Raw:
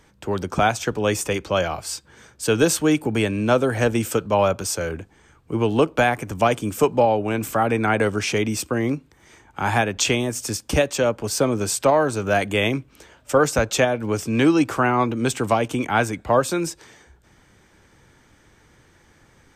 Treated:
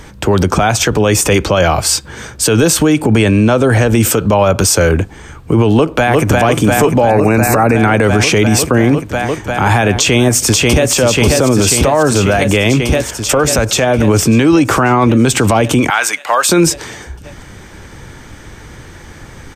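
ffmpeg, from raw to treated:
-filter_complex "[0:a]asettb=1/sr,asplit=3[s0][s1][s2];[s0]atrim=end=2.934[s3];[s1]atrim=start=2.93:end=3.87,asetpts=PTS-STARTPTS,afade=t=in:d=0.004:c=qsin,afade=t=out:st=0.936:d=0.004:c=qsin,lowpass=11000[s4];[s2]atrim=start=3.866[s5];[s3][s4]acrossfade=d=0.004:c1=hsin:c2=qsin[s6];[s6][s5]acrossfade=d=0.004:c1=qsin:c2=hsin,asplit=2[s7][s8];[s8]afade=t=in:st=5.71:d=0.01,afade=t=out:st=6.41:d=0.01,aecho=0:1:350|700|1050|1400|1750|2100|2450|2800|3150|3500|3850|4200:0.421697|0.358442|0.304676|0.258974|0.220128|0.187109|0.159043|0.135186|0.114908|0.0976721|0.0830212|0.0705681[s9];[s7][s9]amix=inputs=2:normalize=0,asettb=1/sr,asplit=3[s10][s11][s12];[s10]atrim=end=7.104[s13];[s11]atrim=start=7.1:end=7.76,asetpts=PTS-STARTPTS,afade=t=in:d=0.004:c=qsin,afade=t=out:st=0.656:d=0.004:c=qsin,asuperstop=centerf=3200:order=8:qfactor=3[s14];[s12]atrim=start=7.756[s15];[s13][s14]acrossfade=d=0.004:c1=hsin:c2=qsin[s16];[s16][s15]acrossfade=d=0.004:c1=qsin:c2=hsin,asplit=2[s17][s18];[s18]afade=t=in:st=9.94:d=0.01,afade=t=out:st=10.94:d=0.01,aecho=0:1:540|1080|1620|2160|2700|3240|3780|4320|4860|5400|5940|6480:0.668344|0.467841|0.327489|0.229242|0.160469|0.112329|0.07863|0.055041|0.0385287|0.0269701|0.0188791|0.0132153[s19];[s17][s19]amix=inputs=2:normalize=0,asettb=1/sr,asplit=3[s20][s21][s22];[s20]atrim=end=11.834[s23];[s21]atrim=start=11.83:end=14.08,asetpts=PTS-STARTPTS,afade=t=in:d=0.004:c=qsin,afade=t=out:st=2.246:d=0.004:c=qsin,acompressor=threshold=0.0501:ratio=6:attack=3.2:release=140:knee=1:detection=peak[s24];[s22]atrim=start=14.076[s25];[s23][s24]acrossfade=d=0.004:c1=hsin:c2=qsin[s26];[s26][s25]acrossfade=d=0.004:c1=qsin:c2=hsin,asettb=1/sr,asplit=3[s27][s28][s29];[s27]atrim=end=15.904[s30];[s28]atrim=start=15.9:end=16.49,asetpts=PTS-STARTPTS,afade=t=in:d=0.004:c=qsin,afade=t=out:st=0.586:d=0.004:c=qsin,highpass=1200[s31];[s29]atrim=start=16.486[s32];[s30][s31]acrossfade=d=0.004:c1=hsin:c2=qsin[s33];[s33][s32]acrossfade=d=0.004:c1=qsin:c2=hsin,lowshelf=f=110:g=6.5,acompressor=threshold=0.126:ratio=6,alimiter=level_in=10:limit=0.891:release=50:level=0:latency=1,volume=0.891"

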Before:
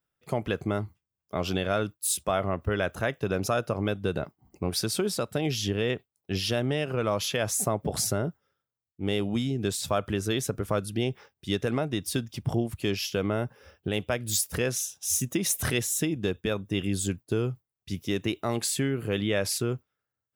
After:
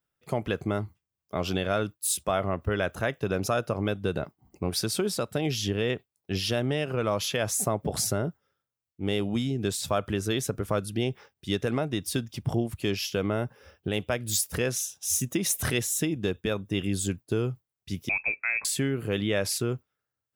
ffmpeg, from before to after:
-filter_complex "[0:a]asettb=1/sr,asplit=3[s0][s1][s2];[s0]atrim=end=18.094[s3];[s1]atrim=start=18.09:end=18.65,asetpts=PTS-STARTPTS,afade=t=in:d=0.004:c=qsin,afade=t=out:st=0.556:d=0.004:c=qsin,lowpass=f=2300:t=q:w=0.5098,lowpass=f=2300:t=q:w=0.6013,lowpass=f=2300:t=q:w=0.9,lowpass=f=2300:t=q:w=2.563,afreqshift=-2700[s4];[s2]atrim=start=18.646[s5];[s3][s4]acrossfade=d=0.004:c1=hsin:c2=qsin[s6];[s6][s5]acrossfade=d=0.004:c1=qsin:c2=hsin"

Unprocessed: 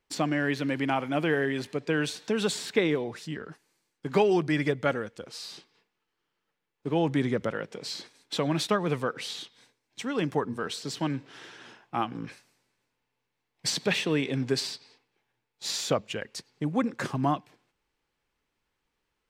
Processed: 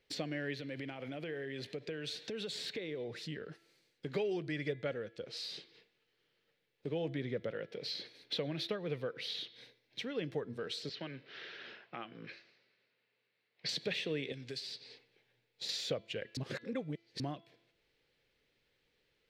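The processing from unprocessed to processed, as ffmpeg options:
-filter_complex "[0:a]asettb=1/sr,asplit=3[s0][s1][s2];[s0]atrim=end=0.584[s3];[s1]atrim=start=0.58:end=3.22,asetpts=PTS-STARTPTS,afade=t=in:d=0.004:c=qsin,afade=t=out:st=2.636:d=0.004:c=qsin,acompressor=threshold=0.0282:ratio=6:attack=3.2:release=140:knee=1:detection=peak[s4];[s2]atrim=start=3.216[s5];[s3][s4]acrossfade=d=0.004:c1=hsin:c2=qsin[s6];[s6][s5]acrossfade=d=0.004:c1=qsin:c2=hsin,asettb=1/sr,asplit=3[s7][s8][s9];[s7]atrim=end=4.734[s10];[s8]atrim=start=4.73:end=5.37,asetpts=PTS-STARTPTS,afade=t=in:d=0.004:c=qsin,afade=t=out:st=0.636:d=0.004:c=qsin,highshelf=f=9100:g=-11[s11];[s9]atrim=start=5.366[s12];[s10][s11]acrossfade=d=0.004:c1=hsin:c2=qsin[s13];[s13][s12]acrossfade=d=0.004:c1=qsin:c2=hsin,asettb=1/sr,asplit=3[s14][s15][s16];[s14]atrim=end=7.104[s17];[s15]atrim=start=7.1:end=10.32,asetpts=PTS-STARTPTS,afade=t=in:d=0.004:c=qsin,afade=t=out:st=3.216:d=0.004:c=qsin,equalizer=f=7700:t=o:w=0.6:g=-10[s18];[s16]atrim=start=10.316[s19];[s17][s18]acrossfade=d=0.004:c1=hsin:c2=qsin[s20];[s20][s19]acrossfade=d=0.004:c1=qsin:c2=hsin,asettb=1/sr,asplit=3[s21][s22][s23];[s21]atrim=end=10.894[s24];[s22]atrim=start=10.89:end=13.69,asetpts=PTS-STARTPTS,afade=t=in:d=0.004:c=qsin,afade=t=out:st=2.796:d=0.004:c=qsin,highpass=230,equalizer=f=290:t=q:w=4:g=-8,equalizer=f=490:t=q:w=4:g=-5,equalizer=f=830:t=q:w=4:g=-4,equalizer=f=1300:t=q:w=4:g=3,equalizer=f=3400:t=q:w=4:g=-4,lowpass=f=4600:w=0.5412,lowpass=f=4600:w=1.3066[s25];[s23]atrim=start=13.686[s26];[s24][s25]acrossfade=d=0.004:c1=hsin:c2=qsin[s27];[s27][s26]acrossfade=d=0.004:c1=qsin:c2=hsin,asettb=1/sr,asplit=3[s28][s29][s30];[s28]atrim=end=14.324[s31];[s29]atrim=start=14.32:end=15.69,asetpts=PTS-STARTPTS,afade=t=in:d=0.004:c=qsin,afade=t=out:st=1.366:d=0.004:c=qsin,acrossover=split=1200|3200[s32][s33][s34];[s32]acompressor=threshold=0.01:ratio=4[s35];[s33]acompressor=threshold=0.00224:ratio=4[s36];[s34]acompressor=threshold=0.01:ratio=4[s37];[s35][s36][s37]amix=inputs=3:normalize=0[s38];[s30]atrim=start=15.686[s39];[s31][s38]acrossfade=d=0.004:c1=hsin:c2=qsin[s40];[s40][s39]acrossfade=d=0.004:c1=qsin:c2=hsin,asplit=3[s41][s42][s43];[s41]atrim=end=16.372[s44];[s42]atrim=start=16.368:end=17.202,asetpts=PTS-STARTPTS,areverse[s45];[s43]atrim=start=17.198[s46];[s44][s45]acrossfade=d=0.004:c1=hsin:c2=hsin[s47];[s47][s46]acrossfade=d=0.004:c1=hsin:c2=hsin,bandreject=f=336.3:t=h:w=4,bandreject=f=672.6:t=h:w=4,bandreject=f=1008.9:t=h:w=4,bandreject=f=1345.2:t=h:w=4,bandreject=f=1681.5:t=h:w=4,bandreject=f=2017.8:t=h:w=4,bandreject=f=2354.1:t=h:w=4,bandreject=f=2690.4:t=h:w=4,bandreject=f=3026.7:t=h:w=4,bandreject=f=3363:t=h:w=4,bandreject=f=3699.3:t=h:w=4,bandreject=f=4035.6:t=h:w=4,bandreject=f=4371.9:t=h:w=4,acompressor=threshold=0.00282:ratio=2,equalizer=f=125:t=o:w=1:g=7,equalizer=f=500:t=o:w=1:g=11,equalizer=f=1000:t=o:w=1:g=-8,equalizer=f=2000:t=o:w=1:g=7,equalizer=f=4000:t=o:w=1:g=10,equalizer=f=8000:t=o:w=1:g=-4,volume=0.75"

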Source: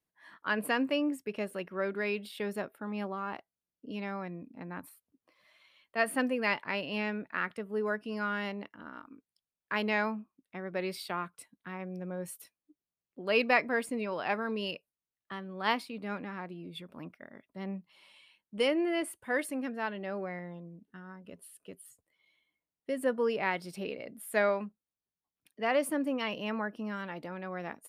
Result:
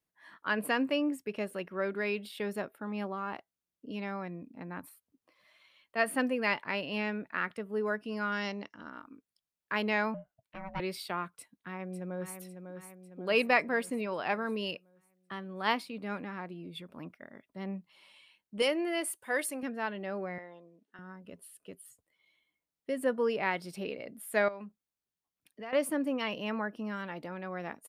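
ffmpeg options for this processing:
-filter_complex "[0:a]asettb=1/sr,asplit=3[s0][s1][s2];[s0]atrim=end=8.324[s3];[s1]atrim=start=8.32:end=8.9,asetpts=PTS-STARTPTS,afade=t=in:d=0.004:c=qsin,afade=t=out:st=0.576:d=0.004:c=qsin,lowpass=f=5700:t=q:w=5.7[s4];[s2]atrim=start=8.896[s5];[s3][s4]acrossfade=d=0.004:c1=hsin:c2=qsin[s6];[s6][s5]acrossfade=d=0.004:c1=qsin:c2=hsin,asettb=1/sr,asplit=3[s7][s8][s9];[s7]atrim=end=10.144[s10];[s8]atrim=start=10.14:end=10.8,asetpts=PTS-STARTPTS,afade=t=in:d=0.004:c=qsin,afade=t=out:st=0.656:d=0.004:c=qsin,aeval=exprs='val(0)*sin(2*PI*390*n/s)':c=same[s11];[s9]atrim=start=10.796[s12];[s10][s11]acrossfade=d=0.004:c1=hsin:c2=qsin[s13];[s13][s12]acrossfade=d=0.004:c1=qsin:c2=hsin,asplit=2[s14][s15];[s15]afade=t=in:st=11.32:d=0.01,afade=t=out:st=12.39:d=0.01,aecho=0:1:550|1100|1650|2200|2750|3300|3850:0.421697|0.231933|0.127563|0.0701598|0.0385879|0.0212233|0.0116728[s16];[s14][s16]amix=inputs=2:normalize=0,asettb=1/sr,asplit=3[s17][s18][s19];[s17]atrim=end=18.624[s20];[s18]atrim=start=18.62:end=19.63,asetpts=PTS-STARTPTS,afade=t=in:d=0.004:c=qsin,afade=t=out:st=1.006:d=0.004:c=qsin,bass=f=250:g=-12,treble=f=4000:g=7[s21];[s19]atrim=start=19.626[s22];[s20][s21]acrossfade=d=0.004:c1=hsin:c2=qsin[s23];[s23][s22]acrossfade=d=0.004:c1=qsin:c2=hsin,asettb=1/sr,asplit=3[s24][s25][s26];[s24]atrim=end=20.384[s27];[s25]atrim=start=20.38:end=20.99,asetpts=PTS-STARTPTS,afade=t=in:d=0.004:c=qsin,afade=t=out:st=0.606:d=0.004:c=qsin,highpass=430,lowpass=7400[s28];[s26]atrim=start=20.986[s29];[s27][s28]acrossfade=d=0.004:c1=hsin:c2=qsin[s30];[s30][s29]acrossfade=d=0.004:c1=qsin:c2=hsin,asettb=1/sr,asplit=3[s31][s32][s33];[s31]atrim=end=24.484[s34];[s32]atrim=start=24.48:end=25.73,asetpts=PTS-STARTPTS,afade=t=in:d=0.004:c=qsin,afade=t=out:st=1.246:d=0.004:c=qsin,acompressor=threshold=0.00794:ratio=3:attack=3.2:release=140:knee=1:detection=peak[s35];[s33]atrim=start=25.726[s36];[s34][s35]acrossfade=d=0.004:c1=hsin:c2=qsin[s37];[s37][s36]acrossfade=d=0.004:c1=qsin:c2=hsin"

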